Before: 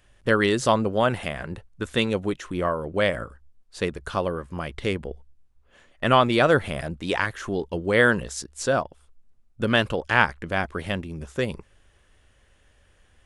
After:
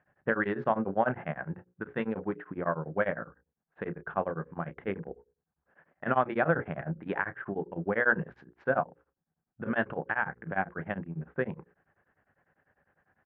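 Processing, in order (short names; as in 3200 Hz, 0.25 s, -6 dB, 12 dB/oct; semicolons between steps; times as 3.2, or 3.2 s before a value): Wiener smoothing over 9 samples; notches 60/120/180/240/300/360/420/480/540 Hz; limiter -11.5 dBFS, peak gain reduction 10 dB; speaker cabinet 150–2000 Hz, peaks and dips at 160 Hz +10 dB, 780 Hz +7 dB, 1600 Hz +7 dB; doubler 31 ms -11.5 dB; beating tremolo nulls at 10 Hz; gain -4.5 dB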